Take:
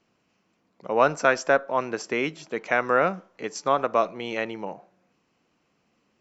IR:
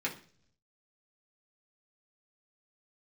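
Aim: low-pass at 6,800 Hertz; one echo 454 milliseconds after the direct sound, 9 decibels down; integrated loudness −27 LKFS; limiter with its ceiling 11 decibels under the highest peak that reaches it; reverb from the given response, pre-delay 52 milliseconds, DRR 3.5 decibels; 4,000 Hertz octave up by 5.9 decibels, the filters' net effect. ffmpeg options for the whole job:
-filter_complex "[0:a]lowpass=6800,equalizer=frequency=4000:width_type=o:gain=9,alimiter=limit=-14dB:level=0:latency=1,aecho=1:1:454:0.355,asplit=2[link_01][link_02];[1:a]atrim=start_sample=2205,adelay=52[link_03];[link_02][link_03]afir=irnorm=-1:irlink=0,volume=-8.5dB[link_04];[link_01][link_04]amix=inputs=2:normalize=0,volume=0.5dB"

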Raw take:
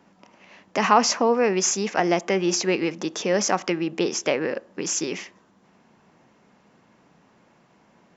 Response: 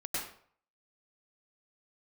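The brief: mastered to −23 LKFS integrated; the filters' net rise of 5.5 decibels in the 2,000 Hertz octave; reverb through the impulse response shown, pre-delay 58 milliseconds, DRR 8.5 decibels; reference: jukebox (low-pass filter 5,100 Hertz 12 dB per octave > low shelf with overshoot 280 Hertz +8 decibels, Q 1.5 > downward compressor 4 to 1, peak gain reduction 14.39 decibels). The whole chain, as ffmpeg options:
-filter_complex "[0:a]equalizer=frequency=2000:width_type=o:gain=7,asplit=2[link_01][link_02];[1:a]atrim=start_sample=2205,adelay=58[link_03];[link_02][link_03]afir=irnorm=-1:irlink=0,volume=-12.5dB[link_04];[link_01][link_04]amix=inputs=2:normalize=0,lowpass=5100,lowshelf=frequency=280:width_type=q:width=1.5:gain=8,acompressor=threshold=-27dB:ratio=4,volume=7dB"

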